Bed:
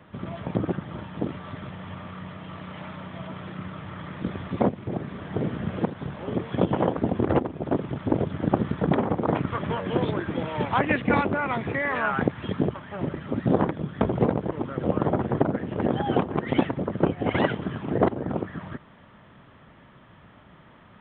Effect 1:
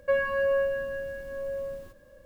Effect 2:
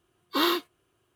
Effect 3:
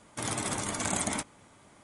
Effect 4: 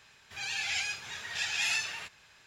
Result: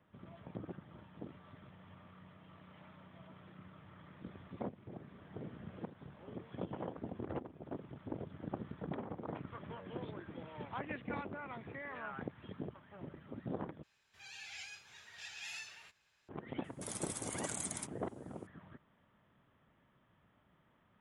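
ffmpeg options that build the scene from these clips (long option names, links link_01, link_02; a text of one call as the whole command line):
ffmpeg -i bed.wav -i cue0.wav -i cue1.wav -i cue2.wav -i cue3.wav -filter_complex "[0:a]volume=-19.5dB[link_01];[3:a]aemphasis=mode=production:type=50kf[link_02];[link_01]asplit=2[link_03][link_04];[link_03]atrim=end=13.834[link_05];[4:a]atrim=end=2.46,asetpts=PTS-STARTPTS,volume=-16dB[link_06];[link_04]atrim=start=16.286[link_07];[link_02]atrim=end=1.83,asetpts=PTS-STARTPTS,volume=-17dB,afade=type=in:duration=0.004:curve=hsin,afade=type=out:start_time=1.826:duration=0.004:curve=hsin,adelay=16640[link_08];[link_05][link_06]acrossfade=duration=0.004:curve1=hsin:curve2=hsin[link_09];[link_09][link_07]acrossfade=duration=0.004:curve1=hsin:curve2=hsin[link_10];[link_10][link_08]amix=inputs=2:normalize=0" out.wav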